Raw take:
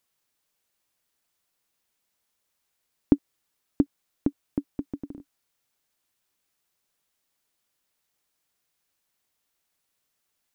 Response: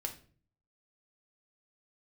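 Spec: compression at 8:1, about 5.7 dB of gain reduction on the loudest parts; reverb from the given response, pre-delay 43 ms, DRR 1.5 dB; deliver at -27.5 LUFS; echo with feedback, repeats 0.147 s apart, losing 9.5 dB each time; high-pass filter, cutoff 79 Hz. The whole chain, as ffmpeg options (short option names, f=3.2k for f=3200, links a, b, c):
-filter_complex "[0:a]highpass=79,acompressor=threshold=-22dB:ratio=8,aecho=1:1:147|294|441|588:0.335|0.111|0.0365|0.012,asplit=2[a][b];[1:a]atrim=start_sample=2205,adelay=43[c];[b][c]afir=irnorm=-1:irlink=0,volume=-1.5dB[d];[a][d]amix=inputs=2:normalize=0,volume=6.5dB"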